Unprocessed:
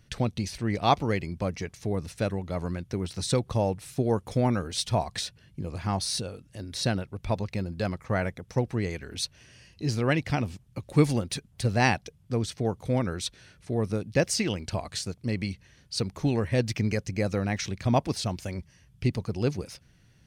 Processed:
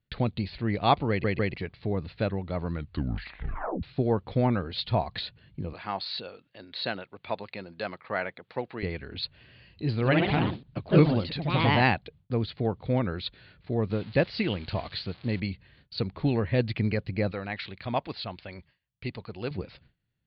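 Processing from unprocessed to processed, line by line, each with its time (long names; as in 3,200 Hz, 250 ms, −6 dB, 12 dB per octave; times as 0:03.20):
0:01.09: stutter in place 0.15 s, 3 plays
0:02.66: tape stop 1.17 s
0:05.73–0:08.83: meter weighting curve A
0:09.94–0:12.04: delay with pitch and tempo change per echo 82 ms, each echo +2 semitones, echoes 3
0:13.90–0:15.40: spike at every zero crossing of −27 dBFS
0:17.31–0:19.51: low-shelf EQ 450 Hz −11.5 dB
whole clip: Butterworth low-pass 4,500 Hz 96 dB per octave; noise gate with hold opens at −48 dBFS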